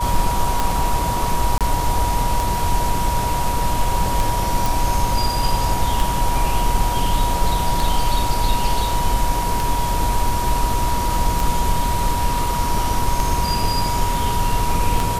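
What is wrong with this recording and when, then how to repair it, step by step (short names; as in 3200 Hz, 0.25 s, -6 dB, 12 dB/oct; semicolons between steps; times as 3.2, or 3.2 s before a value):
tick 33 1/3 rpm
tone 960 Hz -22 dBFS
1.58–1.61 gap 27 ms
4.66 pop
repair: de-click; notch 960 Hz, Q 30; interpolate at 1.58, 27 ms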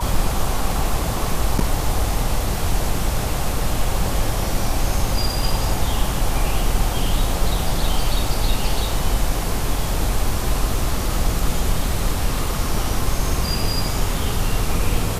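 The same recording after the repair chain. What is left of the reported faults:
none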